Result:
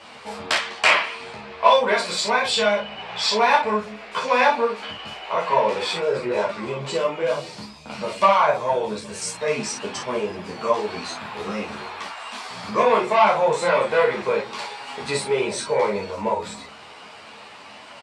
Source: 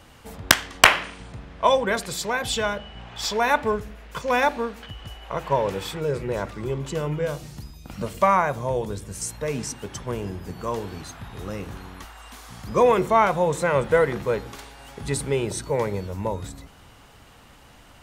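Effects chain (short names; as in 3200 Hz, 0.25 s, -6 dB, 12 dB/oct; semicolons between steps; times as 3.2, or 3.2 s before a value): notch 550 Hz, Q 15; in parallel at +2 dB: compressor, threshold -31 dBFS, peak gain reduction 22 dB; on the sum: soft clip -12.5 dBFS, distortion -12 dB; speaker cabinet 260–8100 Hz, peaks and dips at 310 Hz -6 dB, 600 Hz +6 dB, 1000 Hz +4 dB, 2400 Hz +6 dB, 4400 Hz +5 dB, 6500 Hz -6 dB; on a send: early reflections 24 ms -3.5 dB, 52 ms -5.5 dB; on the sum: ensemble effect; gain +2 dB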